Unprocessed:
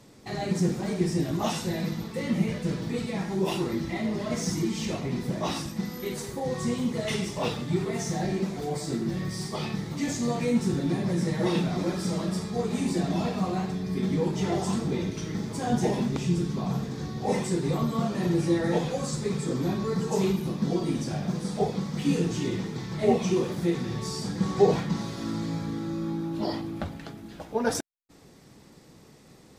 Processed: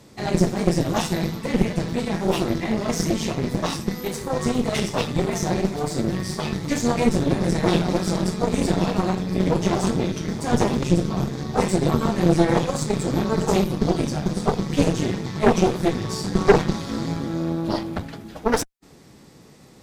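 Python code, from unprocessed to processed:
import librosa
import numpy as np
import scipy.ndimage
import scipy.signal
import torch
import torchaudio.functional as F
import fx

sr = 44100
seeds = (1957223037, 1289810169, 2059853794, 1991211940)

y = fx.stretch_vocoder(x, sr, factor=0.67)
y = fx.cheby_harmonics(y, sr, harmonics=(6,), levels_db=(-12,), full_scale_db=-8.5)
y = F.gain(torch.from_numpy(y), 5.5).numpy()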